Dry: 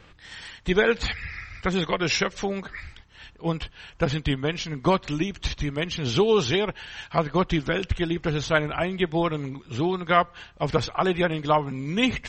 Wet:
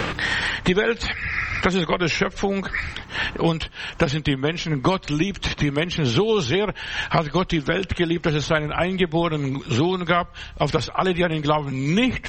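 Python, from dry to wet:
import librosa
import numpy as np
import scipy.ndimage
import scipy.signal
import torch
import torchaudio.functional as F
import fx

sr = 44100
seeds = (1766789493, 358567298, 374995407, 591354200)

y = fx.band_squash(x, sr, depth_pct=100)
y = y * 10.0 ** (2.5 / 20.0)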